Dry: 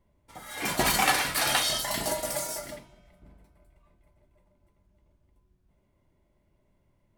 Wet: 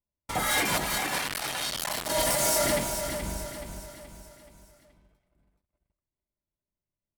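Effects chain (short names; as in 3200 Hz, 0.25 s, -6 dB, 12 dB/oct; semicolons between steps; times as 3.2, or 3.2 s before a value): gate -59 dBFS, range -27 dB; negative-ratio compressor -37 dBFS, ratio -1; sample leveller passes 3; feedback echo 0.426 s, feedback 46%, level -8 dB; 1.18–2.1 core saturation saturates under 1600 Hz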